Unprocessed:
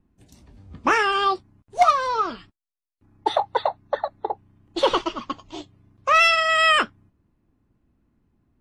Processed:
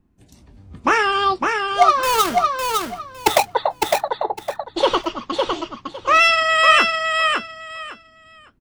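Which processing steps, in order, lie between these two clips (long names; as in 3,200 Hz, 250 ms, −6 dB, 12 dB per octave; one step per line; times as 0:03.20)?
0:02.03–0:03.53: each half-wave held at its own peak
repeating echo 557 ms, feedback 20%, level −4 dB
level +2.5 dB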